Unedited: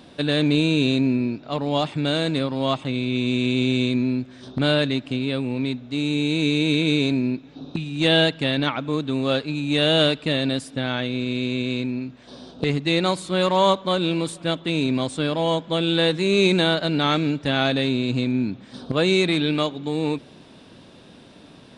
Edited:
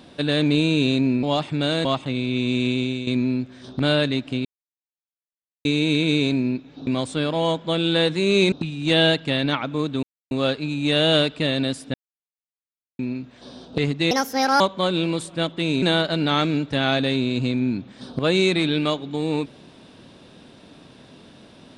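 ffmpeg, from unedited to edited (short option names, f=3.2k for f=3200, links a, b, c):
-filter_complex "[0:a]asplit=14[a][b][c][d][e][f][g][h][i][j][k][l][m][n];[a]atrim=end=1.232[o];[b]atrim=start=1.668:end=2.292[p];[c]atrim=start=2.638:end=3.86,asetpts=PTS-STARTPTS,afade=t=out:st=0.822:d=0.4:silence=0.281838[q];[d]atrim=start=3.86:end=5.24,asetpts=PTS-STARTPTS,afade=t=in:d=0.004:c=hsin:silence=0.281838,afade=t=out:st=1.376:d=0.004:c=hsin[r];[e]atrim=start=5.24:end=6.44,asetpts=PTS-STARTPTS,volume=0[s];[f]atrim=start=6.44:end=7.662,asetpts=PTS-STARTPTS,afade=t=in:d=0.004:c=hsin[t];[g]atrim=start=14.898:end=16.552[u];[h]atrim=start=7.658:end=9.17,asetpts=PTS-STARTPTS,afade=t=out:st=1.508:d=0.004:c=hsin,apad=pad_dur=0.28[v];[i]atrim=start=9.17:end=10.8,asetpts=PTS-STARTPTS,afade=t=in:d=0.004:c=hsin,afade=t=out:st=1.626:d=0.004:c=hsin[w];[j]atrim=start=10.8:end=11.85,asetpts=PTS-STARTPTS,volume=0[x];[k]atrim=start=11.85:end=12.974,asetpts=PTS-STARTPTS,afade=t=in:d=0.004:c=hsin[y];[l]atrim=start=12.97:end=13.68,asetpts=PTS-STARTPTS,asetrate=63504,aresample=44100[z];[m]atrim=start=13.676:end=14.902[aa];[n]atrim=start=16.548[ab];[o][p]acrossfade=d=0.004:c1=hsin:c2=hsin[ac];[q][r][s][t]concat=n=4:v=0:a=1[ad];[ac][ad]acrossfade=d=0.004:c1=hsin:c2=hsin[ae];[ae][u]acrossfade=d=0.004:c1=hsin:c2=hsin[af];[v][w][x][y]concat=n=4:v=0:a=1[ag];[af][ag]acrossfade=d=0.004:c1=hsin:c2=hsin[ah];[ah][z]acrossfade=d=0.004:c1=hsin:c2=hsin[ai];[ai][aa]acrossfade=d=0.004:c1=hsin:c2=hsin[aj];[aj][ab]acrossfade=d=0.004:c1=hsin:c2=hsin"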